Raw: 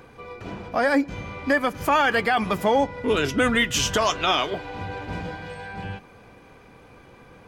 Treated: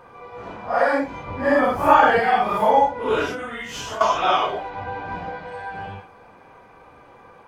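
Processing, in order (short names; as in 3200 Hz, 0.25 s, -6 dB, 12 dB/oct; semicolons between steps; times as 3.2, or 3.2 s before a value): phase scrambler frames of 0.2 s; 1.27–2.2 low shelf 490 Hz +9 dB; 4.7–5.52 Bessel low-pass 5400 Hz, order 2; bell 900 Hz +12.5 dB 2 oct; 3.31–4.01 compressor 12:1, threshold -22 dBFS, peak gain reduction 13 dB; gain -6 dB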